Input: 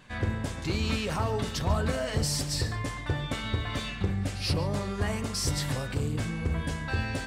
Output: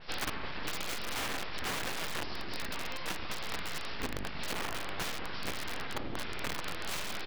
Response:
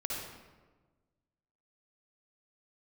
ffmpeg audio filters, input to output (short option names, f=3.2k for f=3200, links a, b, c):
-filter_complex "[0:a]equalizer=f=250:t=o:w=1:g=-6,equalizer=f=1k:t=o:w=1:g=8,equalizer=f=2k:t=o:w=1:g=7,asplit=4[a][b][c][d];[b]asetrate=55563,aresample=44100,atempo=0.793701,volume=-7dB[e];[c]asetrate=58866,aresample=44100,atempo=0.749154,volume=-14dB[f];[d]asetrate=66075,aresample=44100,atempo=0.66742,volume=-4dB[g];[a][e][f][g]amix=inputs=4:normalize=0,aresample=11025,aeval=exprs='abs(val(0))':c=same,aresample=44100,aecho=1:1:392:0.141,aeval=exprs='(mod(8.91*val(0)+1,2)-1)/8.91':c=same,acompressor=threshold=-32dB:ratio=6,adynamicequalizer=threshold=0.00282:dfrequency=4100:dqfactor=0.7:tfrequency=4100:tqfactor=0.7:attack=5:release=100:ratio=0.375:range=2.5:mode=cutabove:tftype=highshelf"